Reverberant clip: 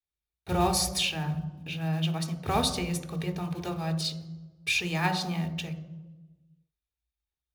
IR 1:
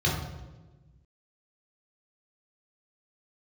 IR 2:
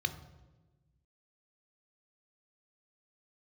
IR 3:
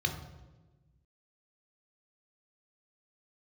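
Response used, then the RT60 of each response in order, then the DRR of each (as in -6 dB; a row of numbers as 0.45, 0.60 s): 2; 1.2, 1.2, 1.2 s; -5.5, 8.0, 3.0 dB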